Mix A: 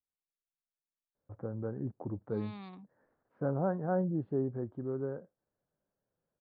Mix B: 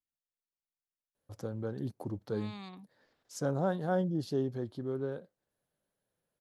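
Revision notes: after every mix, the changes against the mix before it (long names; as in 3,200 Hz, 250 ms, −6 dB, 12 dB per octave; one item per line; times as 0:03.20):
first voice: remove low-pass filter 1,600 Hz 24 dB per octave
master: remove high-frequency loss of the air 270 metres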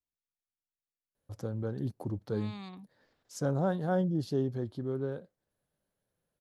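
master: add low-shelf EQ 140 Hz +7 dB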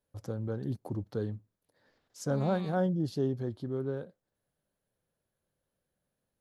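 first voice: entry −1.15 s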